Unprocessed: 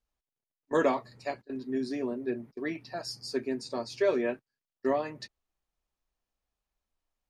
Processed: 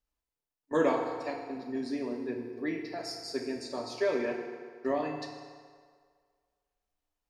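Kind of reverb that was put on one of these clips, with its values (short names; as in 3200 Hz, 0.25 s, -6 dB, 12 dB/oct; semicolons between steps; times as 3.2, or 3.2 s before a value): FDN reverb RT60 1.9 s, low-frequency decay 0.75×, high-frequency decay 0.75×, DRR 1.5 dB; gain -3 dB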